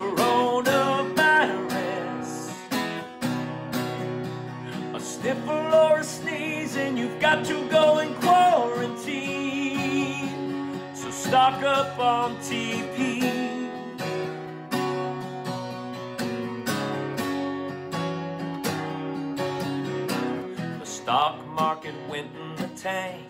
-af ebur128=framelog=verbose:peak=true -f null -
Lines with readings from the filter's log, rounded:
Integrated loudness:
  I:         -25.7 LUFS
  Threshold: -35.8 LUFS
Loudness range:
  LRA:         7.7 LU
  Threshold: -46.0 LUFS
  LRA low:   -30.3 LUFS
  LRA high:  -22.5 LUFS
True peak:
  Peak:      -10.6 dBFS